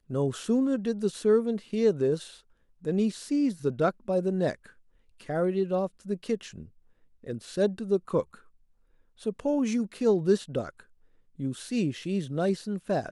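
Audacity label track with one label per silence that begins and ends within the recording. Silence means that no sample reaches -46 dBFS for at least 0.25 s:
2.390000	2.830000	silence
4.700000	5.200000	silence
6.680000	7.230000	silence
8.390000	9.190000	silence
10.810000	11.390000	silence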